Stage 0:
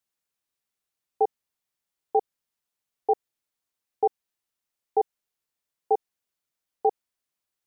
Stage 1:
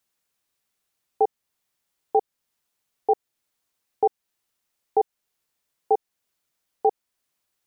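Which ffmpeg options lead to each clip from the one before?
-af "alimiter=limit=0.126:level=0:latency=1:release=344,volume=2.37"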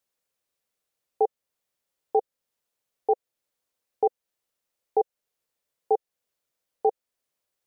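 -af "equalizer=f=520:t=o:w=0.58:g=8.5,volume=0.531"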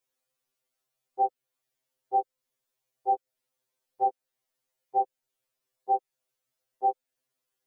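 -af "afftfilt=real='re*2.45*eq(mod(b,6),0)':imag='im*2.45*eq(mod(b,6),0)':win_size=2048:overlap=0.75,volume=1.12"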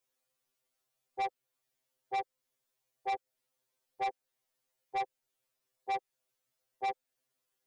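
-af "asoftclip=type=tanh:threshold=0.0335"

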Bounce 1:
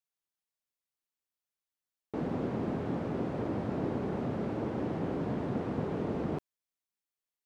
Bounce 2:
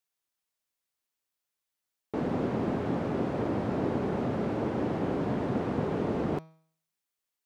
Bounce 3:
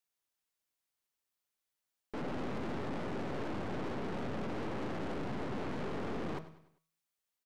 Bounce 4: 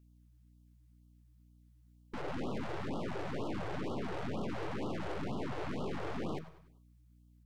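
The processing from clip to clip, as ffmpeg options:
-af "lowshelf=f=340:g=-3,bandreject=f=160.2:t=h:w=4,bandreject=f=320.4:t=h:w=4,bandreject=f=480.6:t=h:w=4,bandreject=f=640.8:t=h:w=4,bandreject=f=801:t=h:w=4,bandreject=f=961.2:t=h:w=4,bandreject=f=1121.4:t=h:w=4,bandreject=f=1281.6:t=h:w=4,bandreject=f=1441.8:t=h:w=4,bandreject=f=1602:t=h:w=4,bandreject=f=1762.2:t=h:w=4,bandreject=f=1922.4:t=h:w=4,bandreject=f=2082.6:t=h:w=4,bandreject=f=2242.8:t=h:w=4,bandreject=f=2403:t=h:w=4,bandreject=f=2563.2:t=h:w=4,bandreject=f=2723.4:t=h:w=4,bandreject=f=2883.6:t=h:w=4,bandreject=f=3043.8:t=h:w=4,bandreject=f=3204:t=h:w=4,bandreject=f=3364.2:t=h:w=4,bandreject=f=3524.4:t=h:w=4,bandreject=f=3684.6:t=h:w=4,bandreject=f=3844.8:t=h:w=4,bandreject=f=4005:t=h:w=4,bandreject=f=4165.2:t=h:w=4,bandreject=f=4325.4:t=h:w=4,bandreject=f=4485.6:t=h:w=4,bandreject=f=4645.8:t=h:w=4,bandreject=f=4806:t=h:w=4,bandreject=f=4966.2:t=h:w=4,bandreject=f=5126.4:t=h:w=4,bandreject=f=5286.6:t=h:w=4,bandreject=f=5446.8:t=h:w=4,bandreject=f=5607:t=h:w=4,bandreject=f=5767.2:t=h:w=4,bandreject=f=5927.4:t=h:w=4,bandreject=f=6087.6:t=h:w=4,bandreject=f=6247.8:t=h:w=4,volume=1.88"
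-af "aeval=exprs='(tanh(100*val(0)+0.75)-tanh(0.75))/100':c=same,aecho=1:1:99|198|297|396:0.178|0.0782|0.0344|0.0151,volume=1.33"
-af "aeval=exprs='val(0)+0.000794*(sin(2*PI*60*n/s)+sin(2*PI*2*60*n/s)/2+sin(2*PI*3*60*n/s)/3+sin(2*PI*4*60*n/s)/4+sin(2*PI*5*60*n/s)/5)':c=same,afftfilt=real='re*(1-between(b*sr/1024,200*pow(2000/200,0.5+0.5*sin(2*PI*2.1*pts/sr))/1.41,200*pow(2000/200,0.5+0.5*sin(2*PI*2.1*pts/sr))*1.41))':imag='im*(1-between(b*sr/1024,200*pow(2000/200,0.5+0.5*sin(2*PI*2.1*pts/sr))/1.41,200*pow(2000/200,0.5+0.5*sin(2*PI*2.1*pts/sr))*1.41))':win_size=1024:overlap=0.75,volume=1.12"

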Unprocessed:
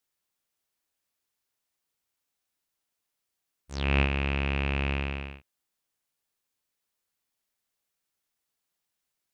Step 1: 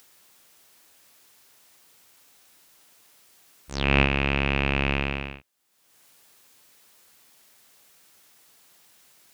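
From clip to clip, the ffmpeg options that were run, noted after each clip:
-af "highpass=f=120:p=1,acompressor=mode=upward:threshold=0.00447:ratio=2.5,volume=2.11"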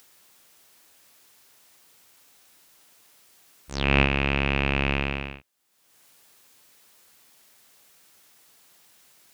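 -af anull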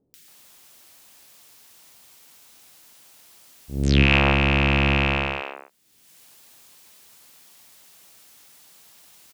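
-filter_complex "[0:a]acrossover=split=430|1600[s0][s1][s2];[s2]adelay=140[s3];[s1]adelay=280[s4];[s0][s4][s3]amix=inputs=3:normalize=0,volume=2"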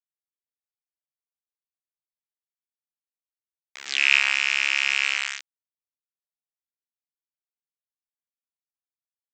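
-af "aresample=16000,aeval=exprs='val(0)*gte(abs(val(0)),0.112)':c=same,aresample=44100,highpass=f=2000:t=q:w=1.6,volume=0.794"

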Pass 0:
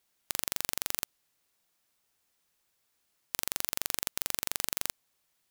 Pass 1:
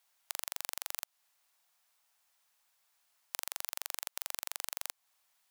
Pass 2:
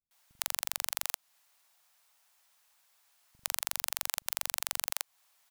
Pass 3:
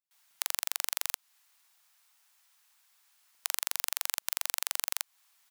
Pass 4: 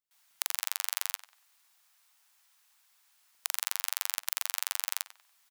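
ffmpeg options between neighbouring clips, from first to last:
-af "lowshelf=f=530:t=q:w=1.5:g=-12,acompressor=threshold=0.0178:ratio=2.5,volume=1.12"
-filter_complex "[0:a]acrossover=split=230[s0][s1];[s1]adelay=110[s2];[s0][s2]amix=inputs=2:normalize=0,volume=1.88"
-af "highpass=940,volume=1.19"
-filter_complex "[0:a]asplit=2[s0][s1];[s1]adelay=95,lowpass=f=3300:p=1,volume=0.224,asplit=2[s2][s3];[s3]adelay=95,lowpass=f=3300:p=1,volume=0.32,asplit=2[s4][s5];[s5]adelay=95,lowpass=f=3300:p=1,volume=0.32[s6];[s0][s2][s4][s6]amix=inputs=4:normalize=0"

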